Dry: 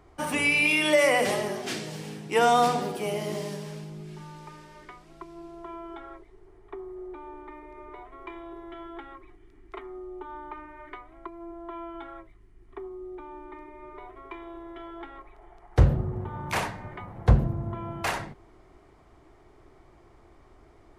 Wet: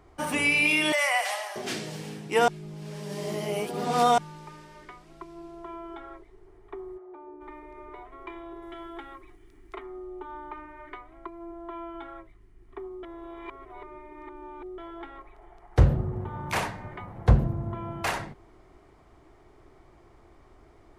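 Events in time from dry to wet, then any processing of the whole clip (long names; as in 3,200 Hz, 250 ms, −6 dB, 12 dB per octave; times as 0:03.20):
0:00.92–0:01.56: elliptic high-pass filter 690 Hz, stop band 80 dB
0:02.48–0:04.18: reverse
0:06.97–0:07.40: resonant band-pass 1,300 Hz → 260 Hz, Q 0.97
0:08.62–0:09.75: high-shelf EQ 4,900 Hz +10.5 dB
0:13.03–0:14.78: reverse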